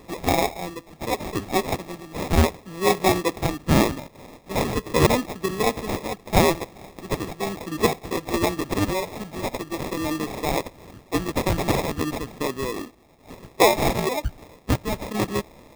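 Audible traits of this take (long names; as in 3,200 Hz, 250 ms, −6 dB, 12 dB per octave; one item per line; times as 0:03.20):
phaser sweep stages 4, 0.41 Hz, lowest notch 420–1,100 Hz
aliases and images of a low sample rate 1,500 Hz, jitter 0%
sample-and-hold tremolo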